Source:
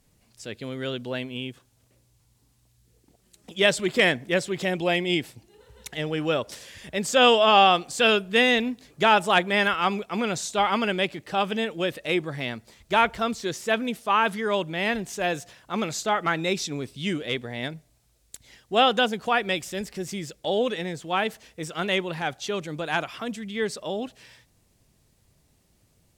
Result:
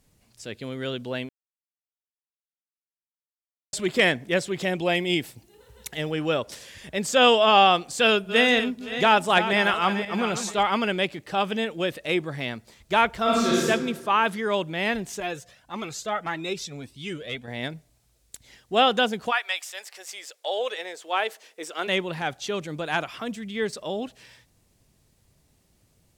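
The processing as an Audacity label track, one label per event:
1.290000	3.730000	silence
4.950000	6.120000	high-shelf EQ 12,000 Hz +11 dB
7.980000	10.630000	feedback delay that plays each chunk backwards 259 ms, feedback 44%, level −10 dB
13.230000	13.660000	thrown reverb, RT60 1.4 s, DRR −7.5 dB
15.200000	17.480000	flanger whose copies keep moving one way rising 1.7 Hz
19.300000	21.870000	high-pass filter 870 Hz → 300 Hz 24 dB per octave
23.070000	23.730000	de-essing amount 95%

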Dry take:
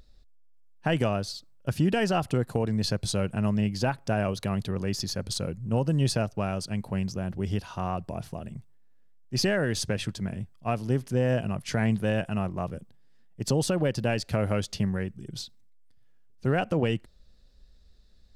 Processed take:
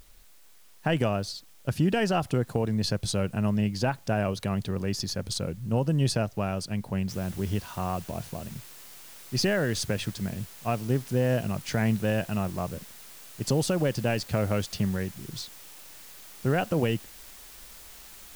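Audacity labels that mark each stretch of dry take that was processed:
7.090000	7.090000	noise floor change −60 dB −48 dB

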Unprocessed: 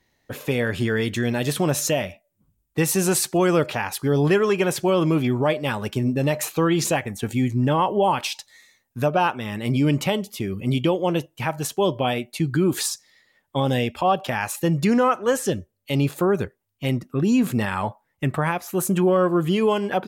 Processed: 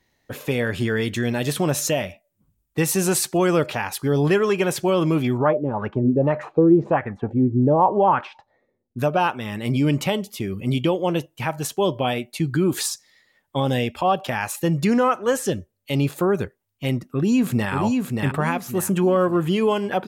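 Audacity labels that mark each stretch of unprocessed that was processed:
5.370000	8.980000	auto-filter low-pass sine 2.8 Hz → 0.47 Hz 360–1,500 Hz
16.940000	17.730000	delay throw 580 ms, feedback 35%, level −3.5 dB

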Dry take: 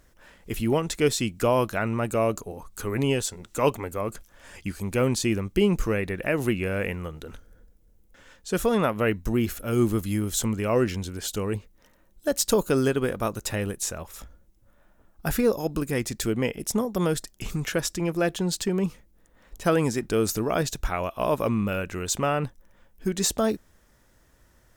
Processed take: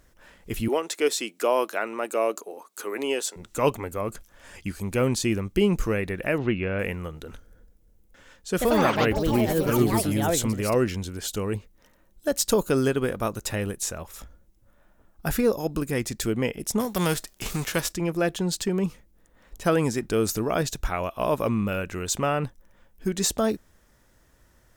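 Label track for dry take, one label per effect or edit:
0.680000	3.360000	high-pass filter 320 Hz 24 dB per octave
6.380000	6.790000	low-pass filter 3,700 Hz 24 dB per octave
8.500000	11.370000	delay with pitch and tempo change per echo 96 ms, each echo +5 semitones, echoes 3
16.790000	17.920000	spectral envelope flattened exponent 0.6

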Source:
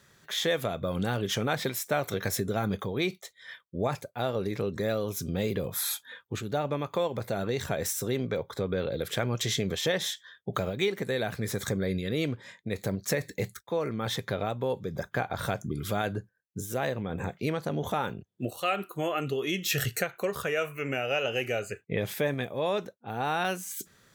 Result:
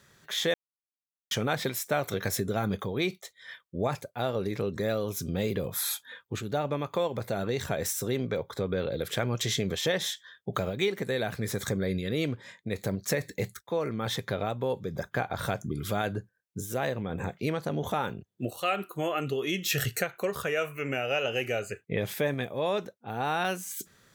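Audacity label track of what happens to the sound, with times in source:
0.540000	1.310000	silence

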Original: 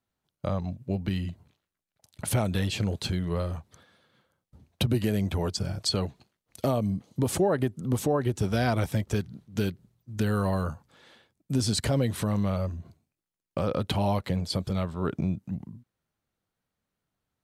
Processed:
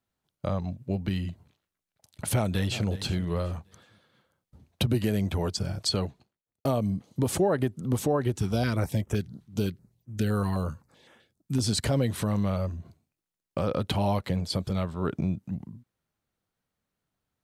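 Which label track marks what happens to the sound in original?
2.330000	2.870000	delay throw 370 ms, feedback 30%, level −14.5 dB
5.950000	6.650000	fade out and dull
8.380000	11.640000	notch on a step sequencer 7.8 Hz 560–4,300 Hz

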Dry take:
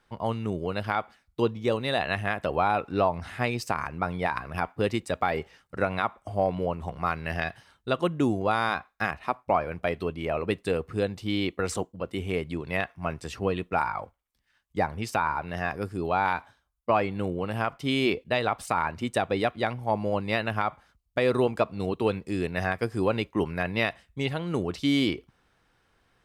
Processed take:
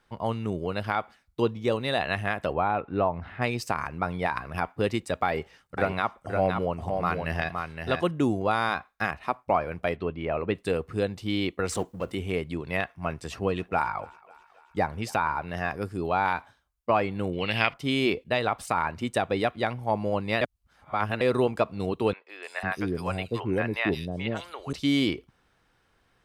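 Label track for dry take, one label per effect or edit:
2.530000	3.420000	high-frequency loss of the air 390 metres
5.260000	8.110000	single-tap delay 516 ms −5 dB
9.960000	10.550000	low-pass filter 2,900 Hz
11.720000	12.150000	mu-law and A-law mismatch coded by mu
12.810000	15.300000	feedback echo with a high-pass in the loop 273 ms, feedback 66%, level −22.5 dB
17.330000	17.740000	flat-topped bell 3,100 Hz +15.5 dB
20.410000	21.210000	reverse
22.130000	24.730000	three-band delay without the direct sound mids, highs, lows 160/500 ms, splits 610/3,700 Hz

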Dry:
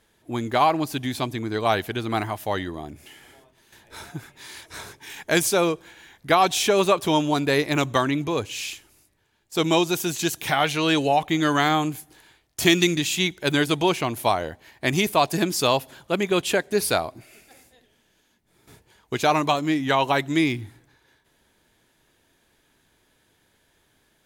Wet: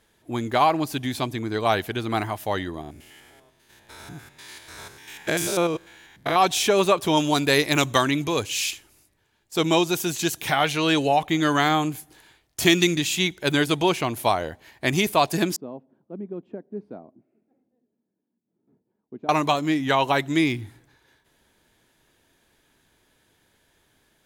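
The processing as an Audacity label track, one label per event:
2.810000	6.360000	spectrum averaged block by block every 100 ms
7.170000	8.710000	high-shelf EQ 2,500 Hz +8 dB
15.560000	19.290000	four-pole ladder band-pass 260 Hz, resonance 45%

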